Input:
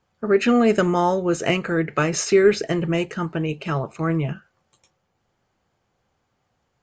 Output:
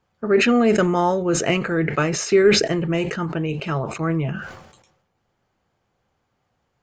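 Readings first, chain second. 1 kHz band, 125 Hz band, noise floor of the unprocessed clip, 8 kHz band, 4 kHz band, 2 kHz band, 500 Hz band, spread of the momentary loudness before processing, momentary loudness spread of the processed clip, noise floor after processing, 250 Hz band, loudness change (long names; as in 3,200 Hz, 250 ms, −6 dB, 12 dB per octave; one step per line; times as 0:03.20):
+0.5 dB, +1.0 dB, −72 dBFS, +2.5 dB, +5.0 dB, +2.0 dB, +0.5 dB, 10 LU, 10 LU, −72 dBFS, +0.5 dB, +1.0 dB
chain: high-shelf EQ 6,800 Hz −6 dB
level that may fall only so fast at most 61 dB per second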